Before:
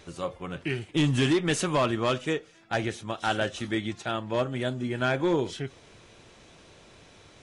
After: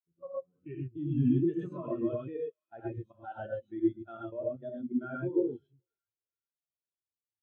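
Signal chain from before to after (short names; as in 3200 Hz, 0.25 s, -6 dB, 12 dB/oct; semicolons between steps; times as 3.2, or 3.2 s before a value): notches 60/120 Hz; level quantiser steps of 15 dB; thinning echo 0.423 s, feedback 76%, high-pass 1100 Hz, level -17 dB; non-linear reverb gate 0.15 s rising, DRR -1.5 dB; spectral expander 2.5:1; gain -2 dB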